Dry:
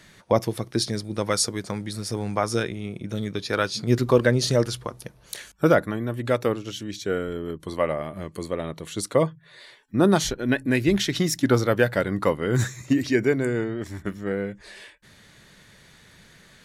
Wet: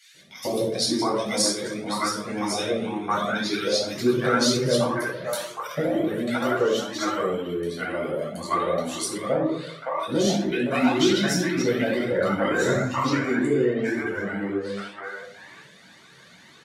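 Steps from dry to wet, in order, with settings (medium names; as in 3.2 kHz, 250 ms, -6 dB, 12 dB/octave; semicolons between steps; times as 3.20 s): high-pass 290 Hz 12 dB/octave; simulated room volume 880 m³, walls furnished, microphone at 7.5 m; peak limiter -7 dBFS, peak gain reduction 9.5 dB; treble shelf 8.6 kHz -2 dB, from 9.95 s -11.5 dB; three bands offset in time highs, lows, mids 140/710 ms, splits 640/2000 Hz; Shepard-style flanger rising 2 Hz; trim +1.5 dB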